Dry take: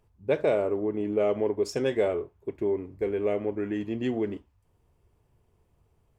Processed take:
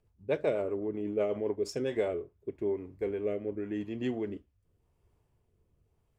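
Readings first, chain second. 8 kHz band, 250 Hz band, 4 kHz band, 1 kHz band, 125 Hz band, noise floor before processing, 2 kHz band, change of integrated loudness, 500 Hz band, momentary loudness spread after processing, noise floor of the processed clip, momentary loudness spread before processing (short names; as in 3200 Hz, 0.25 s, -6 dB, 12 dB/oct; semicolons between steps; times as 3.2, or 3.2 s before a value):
n/a, -5.0 dB, -5.0 dB, -7.5 dB, -5.0 dB, -68 dBFS, -5.5 dB, -5.0 dB, -5.5 dB, 6 LU, -74 dBFS, 6 LU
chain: rotary speaker horn 8 Hz, later 0.9 Hz, at 1.21; gain -3.5 dB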